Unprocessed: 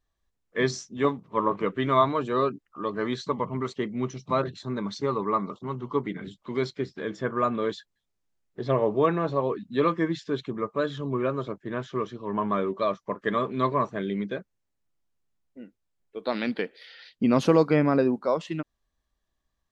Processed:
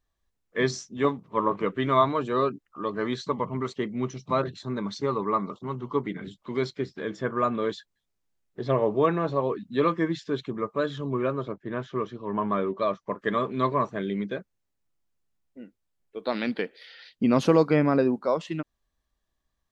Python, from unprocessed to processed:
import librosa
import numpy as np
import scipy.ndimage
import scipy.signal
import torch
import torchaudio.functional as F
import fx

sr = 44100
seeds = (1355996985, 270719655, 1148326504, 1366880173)

y = fx.lowpass(x, sr, hz=fx.line((11.32, 3200.0), (13.07, 4800.0)), slope=6, at=(11.32, 13.07), fade=0.02)